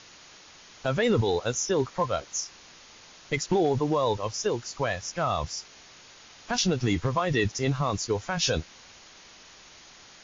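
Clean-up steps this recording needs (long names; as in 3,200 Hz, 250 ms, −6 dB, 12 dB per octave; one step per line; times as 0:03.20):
noise reduction from a noise print 22 dB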